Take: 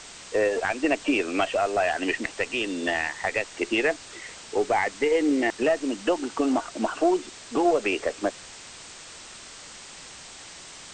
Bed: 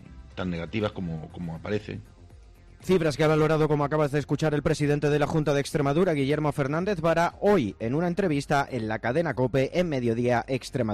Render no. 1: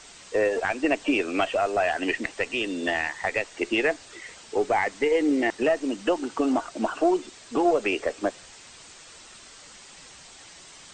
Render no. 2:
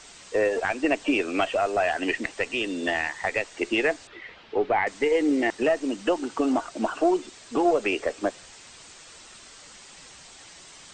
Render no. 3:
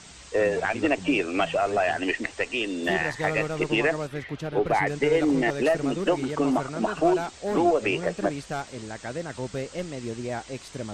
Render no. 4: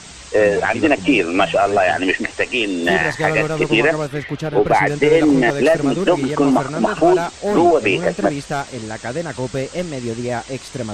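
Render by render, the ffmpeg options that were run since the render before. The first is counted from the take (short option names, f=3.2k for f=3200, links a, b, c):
-af "afftdn=nr=6:nf=-44"
-filter_complex "[0:a]asettb=1/sr,asplit=3[a][b][c];[a]atrim=end=4.074[d];[b]atrim=start=4.07:end=4.87,asetpts=PTS-STARTPTS,afade=t=in:d=0.004:c=qsin,afade=t=out:st=0.796:d=0.004:c=qsin,lowpass=f=3.6k:w=0.5412,lowpass=f=3.6k:w=1.3066[e];[c]atrim=start=4.866[f];[d][e]acrossfade=d=0.004:c1=hsin:c2=qsin[g];[g][f]acrossfade=d=0.004:c1=qsin:c2=hsin"
-filter_complex "[1:a]volume=-8dB[a];[0:a][a]amix=inputs=2:normalize=0"
-af "volume=9dB,alimiter=limit=-3dB:level=0:latency=1"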